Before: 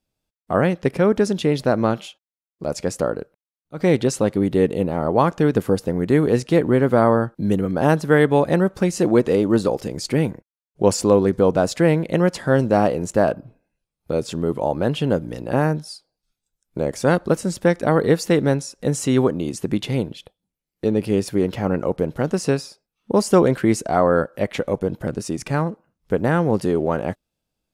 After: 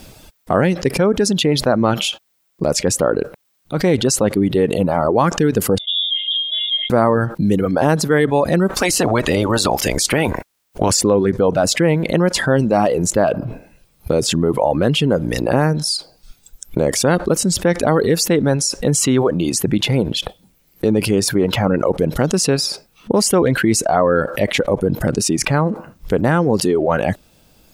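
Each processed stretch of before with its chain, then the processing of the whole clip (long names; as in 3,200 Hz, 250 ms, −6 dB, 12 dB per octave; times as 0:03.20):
0:05.78–0:06.90: high-shelf EQ 2,700 Hz −11.5 dB + resonances in every octave F#, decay 0.51 s + voice inversion scrambler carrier 3,600 Hz
0:08.68–0:10.89: ceiling on every frequency bin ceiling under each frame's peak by 16 dB + downward compressor 3 to 1, threshold −18 dBFS
whole clip: reverb reduction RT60 1.3 s; envelope flattener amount 70%; level −1 dB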